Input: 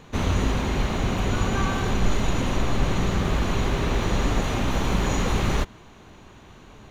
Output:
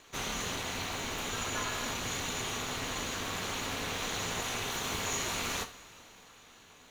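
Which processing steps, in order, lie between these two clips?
tilt EQ +3.5 dB/octave; ring modulator 130 Hz; two-slope reverb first 0.32 s, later 4 s, from -20 dB, DRR 6.5 dB; trim -6 dB

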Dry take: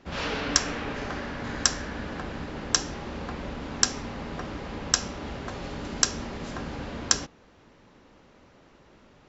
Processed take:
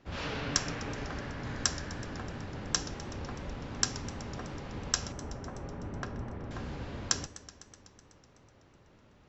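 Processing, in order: octave divider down 1 oct, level +1 dB; 5.12–6.51 s: low-pass 1.5 kHz 12 dB/octave; modulated delay 125 ms, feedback 75%, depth 94 cents, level -17 dB; trim -7 dB

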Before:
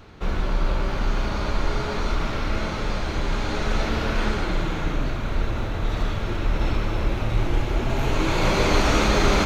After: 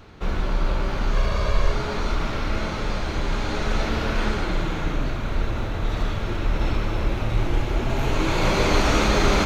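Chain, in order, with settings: 1.13–1.72 s: comb 1.8 ms, depth 65%

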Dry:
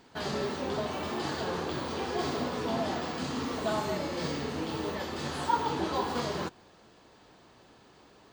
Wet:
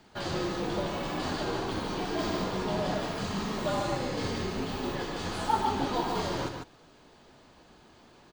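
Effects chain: frequency shift -56 Hz; delay 147 ms -5.5 dB

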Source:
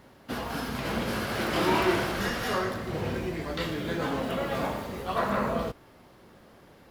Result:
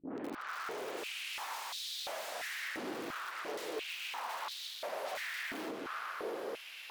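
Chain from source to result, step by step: tape start-up on the opening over 1.54 s; Schroeder reverb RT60 0.38 s, combs from 32 ms, DRR 9 dB; integer overflow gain 25 dB; filtered feedback delay 151 ms, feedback 77%, low-pass 4 kHz, level -20 dB; compression 6:1, threshold -44 dBFS, peak gain reduction 14.5 dB; sine folder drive 11 dB, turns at -35.5 dBFS; peak limiter -41 dBFS, peak gain reduction 8 dB; step-sequenced high-pass 2.9 Hz 300–3800 Hz; trim +1 dB

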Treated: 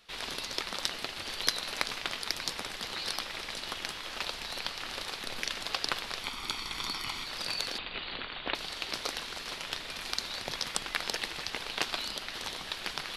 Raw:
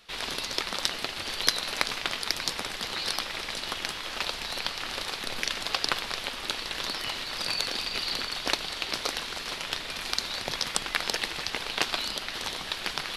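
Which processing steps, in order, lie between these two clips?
6.23–7.26 s: comb 0.9 ms, depth 59%; 7.78–8.55 s: steep low-pass 3.8 kHz 48 dB/octave; trim -4.5 dB

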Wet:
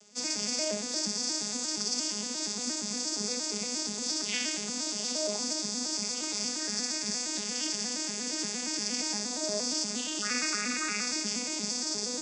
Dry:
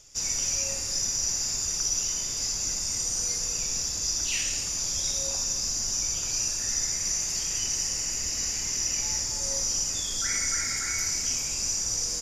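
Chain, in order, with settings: vocoder on a broken chord minor triad, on G#3, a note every 117 ms; trim -3 dB

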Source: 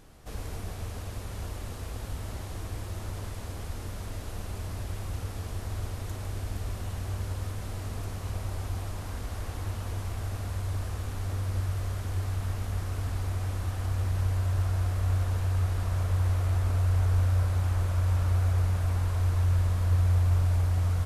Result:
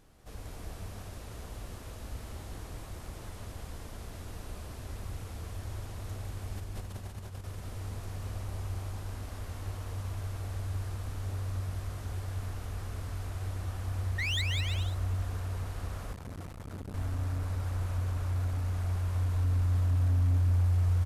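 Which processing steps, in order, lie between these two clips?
6.57–7.44 s: compressor with a negative ratio -36 dBFS, ratio -0.5; 14.18–14.42 s: painted sound rise 1.8–4.1 kHz -24 dBFS; hard clipper -22 dBFS, distortion -17 dB; bouncing-ball echo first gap 190 ms, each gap 0.7×, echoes 5; 16.13–16.94 s: transformer saturation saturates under 360 Hz; trim -7 dB

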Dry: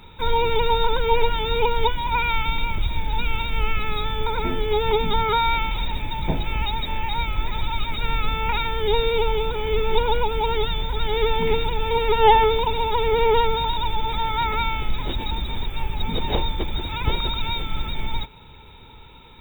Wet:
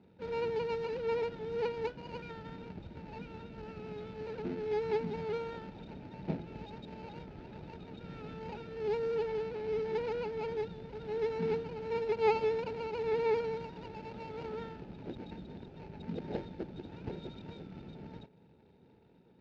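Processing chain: median filter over 41 samples; cabinet simulation 180–4300 Hz, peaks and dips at 180 Hz +5 dB, 1.1 kHz -10 dB, 1.9 kHz -4 dB, 3.4 kHz -5 dB; trim -8 dB

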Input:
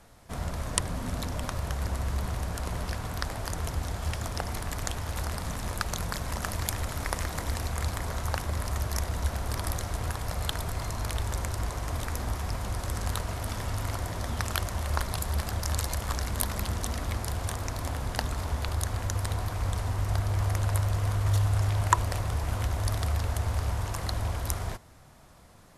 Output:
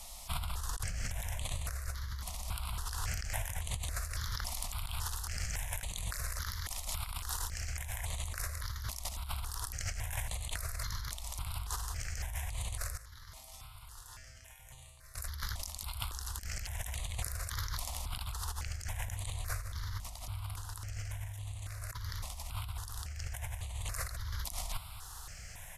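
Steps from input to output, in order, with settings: amplifier tone stack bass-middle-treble 10-0-10; compressor with a negative ratio -46 dBFS, ratio -1; 12.97–15.15 s: feedback comb 130 Hz, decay 0.87 s, harmonics all, mix 90%; delay 1166 ms -16.5 dB; stepped phaser 3.6 Hz 420–5300 Hz; trim +8.5 dB

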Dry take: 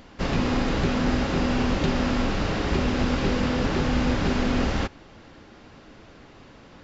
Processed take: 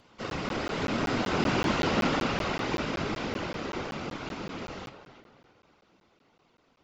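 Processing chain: Doppler pass-by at 1.79 s, 6 m/s, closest 4.6 m; dynamic bell 1.6 kHz, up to +4 dB, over -44 dBFS, Q 1.2; high-pass 55 Hz; bass shelf 180 Hz -10 dB; band-stop 1.7 kHz, Q 6.8; on a send: tape echo 316 ms, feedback 39%, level -10.5 dB, low-pass 3.8 kHz; on the sum: whisper effect; flange 0.93 Hz, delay 6.7 ms, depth 9.8 ms, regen +81%; crackling interface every 0.19 s, samples 512, zero, from 0.30 s; trim +4.5 dB

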